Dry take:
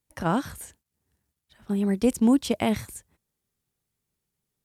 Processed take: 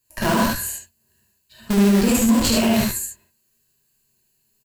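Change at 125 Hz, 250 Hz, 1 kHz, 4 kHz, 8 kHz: +8.0, +6.0, +6.5, +13.0, +15.0 dB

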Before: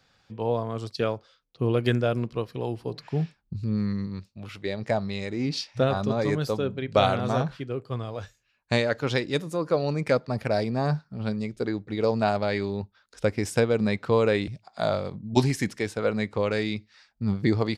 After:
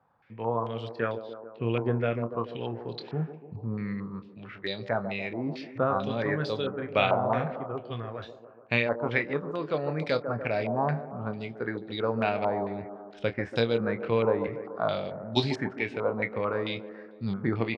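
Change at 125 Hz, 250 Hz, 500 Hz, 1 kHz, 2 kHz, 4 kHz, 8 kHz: -5.5 dB, -4.5 dB, -3.0 dB, -0.5 dB, +0.5 dB, -2.5 dB, under -15 dB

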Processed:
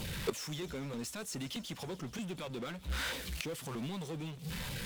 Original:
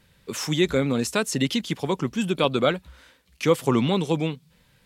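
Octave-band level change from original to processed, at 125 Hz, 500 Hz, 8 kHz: -13.0, -18.5, -9.5 dB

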